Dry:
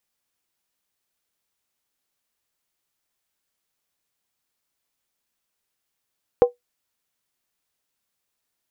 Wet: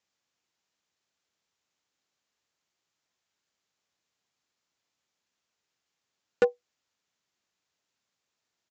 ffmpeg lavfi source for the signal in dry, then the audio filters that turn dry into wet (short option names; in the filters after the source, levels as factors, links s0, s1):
-f lavfi -i "aevalsrc='0.531*pow(10,-3*t/0.14)*sin(2*PI*487*t)+0.141*pow(10,-3*t/0.111)*sin(2*PI*776.3*t)+0.0376*pow(10,-3*t/0.096)*sin(2*PI*1040.2*t)+0.01*pow(10,-3*t/0.092)*sin(2*PI*1118.2*t)+0.00266*pow(10,-3*t/0.086)*sin(2*PI*1292*t)':d=0.63:s=44100"
-af "aresample=16000,volume=6.31,asoftclip=hard,volume=0.158,aresample=44100,highpass=78"